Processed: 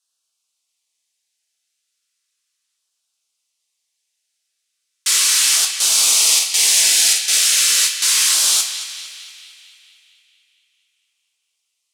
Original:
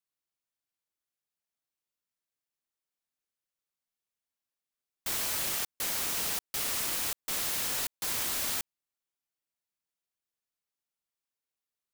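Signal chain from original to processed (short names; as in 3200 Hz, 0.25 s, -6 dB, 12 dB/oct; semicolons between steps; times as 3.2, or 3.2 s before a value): weighting filter ITU-R 468; LFO notch saw down 0.36 Hz 630–2200 Hz; 5.86–7.35 doubler 50 ms -5 dB; on a send: narrowing echo 0.226 s, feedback 67%, band-pass 2600 Hz, level -9 dB; on the sum: two-slope reverb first 0.36 s, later 2.5 s, from -18 dB, DRR 1.5 dB; gain +8 dB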